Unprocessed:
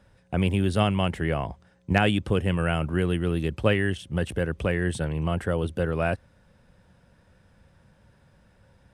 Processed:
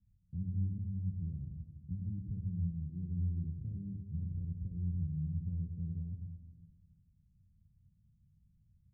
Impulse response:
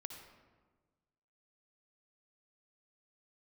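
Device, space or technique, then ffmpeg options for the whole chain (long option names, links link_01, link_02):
club heard from the street: -filter_complex "[0:a]asettb=1/sr,asplit=3[link_01][link_02][link_03];[link_01]atrim=end=3.574[link_04];[link_02]atrim=start=3.57:end=4.31,asetpts=PTS-STARTPTS,afade=type=in:duration=0.004:curve=qsin,afade=type=out:start_time=0.736:duration=0.004:curve=qsin,asplit=2[link_05][link_06];[link_06]adelay=26,volume=-3dB[link_07];[link_05][link_07]amix=inputs=2:normalize=0,atrim=end_sample=32634[link_08];[link_03]atrim=start=4.306[link_09];[link_04][link_08]acrossfade=duration=0.004:curve1=hsin:curve2=qsin[link_10];[link_10][link_09]acrossfade=duration=0.004:curve1=qsin:curve2=hsin,alimiter=limit=-15.5dB:level=0:latency=1,lowpass=frequency=170:width=0.5412,lowpass=frequency=170:width=1.3066[link_11];[1:a]atrim=start_sample=2205[link_12];[link_11][link_12]afir=irnorm=-1:irlink=0,volume=-5dB"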